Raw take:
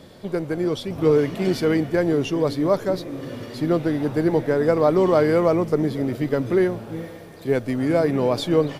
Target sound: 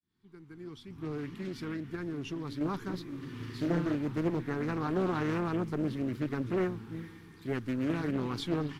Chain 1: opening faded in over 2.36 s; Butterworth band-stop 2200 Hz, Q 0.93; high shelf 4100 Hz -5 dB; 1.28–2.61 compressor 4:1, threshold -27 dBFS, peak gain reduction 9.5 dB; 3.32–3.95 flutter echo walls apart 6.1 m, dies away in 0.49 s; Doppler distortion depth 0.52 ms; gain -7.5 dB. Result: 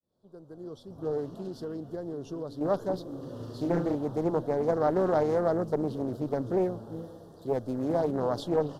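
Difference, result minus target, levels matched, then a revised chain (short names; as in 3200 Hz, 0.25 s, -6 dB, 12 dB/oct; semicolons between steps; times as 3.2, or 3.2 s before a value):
2000 Hz band -9.0 dB
opening faded in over 2.36 s; Butterworth band-stop 590 Hz, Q 0.93; high shelf 4100 Hz -5 dB; 1.28–2.61 compressor 4:1, threshold -27 dBFS, peak gain reduction 6 dB; 3.32–3.95 flutter echo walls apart 6.1 m, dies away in 0.49 s; Doppler distortion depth 0.52 ms; gain -7.5 dB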